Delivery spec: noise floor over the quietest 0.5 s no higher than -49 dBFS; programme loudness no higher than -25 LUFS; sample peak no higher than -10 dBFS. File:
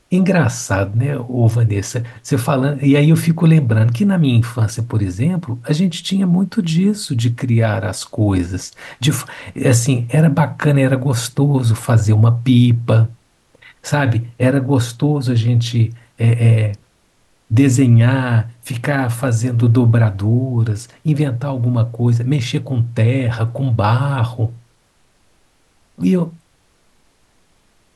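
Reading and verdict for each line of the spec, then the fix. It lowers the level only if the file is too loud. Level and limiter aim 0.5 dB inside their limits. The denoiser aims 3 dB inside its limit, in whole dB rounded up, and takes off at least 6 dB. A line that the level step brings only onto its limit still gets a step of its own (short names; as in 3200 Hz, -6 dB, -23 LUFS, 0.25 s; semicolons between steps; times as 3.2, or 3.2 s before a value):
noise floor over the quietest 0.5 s -57 dBFS: OK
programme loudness -16.0 LUFS: fail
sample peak -2.5 dBFS: fail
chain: gain -9.5 dB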